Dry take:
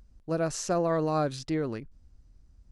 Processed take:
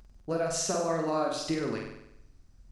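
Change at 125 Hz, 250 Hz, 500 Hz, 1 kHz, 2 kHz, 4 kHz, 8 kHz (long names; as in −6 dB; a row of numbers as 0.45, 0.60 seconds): −5.5, −2.0, −1.0, −1.0, +1.0, +4.5, +4.5 decibels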